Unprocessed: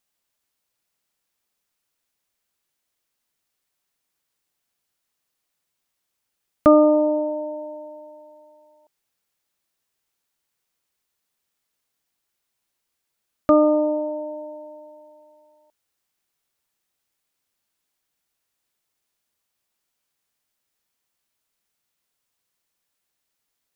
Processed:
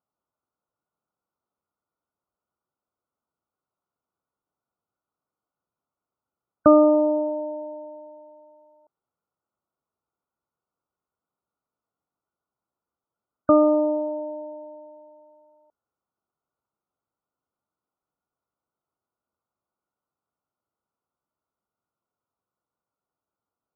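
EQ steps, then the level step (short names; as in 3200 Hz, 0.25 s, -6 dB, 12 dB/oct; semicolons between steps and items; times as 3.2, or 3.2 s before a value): HPF 58 Hz; brick-wall FIR low-pass 1500 Hz; -1.0 dB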